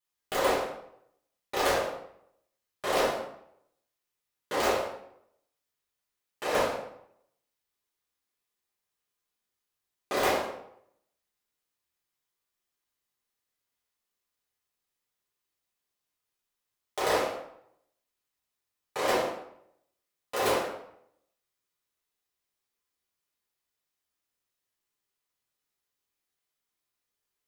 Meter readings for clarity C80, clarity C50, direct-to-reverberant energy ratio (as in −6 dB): 7.0 dB, 3.5 dB, −10.0 dB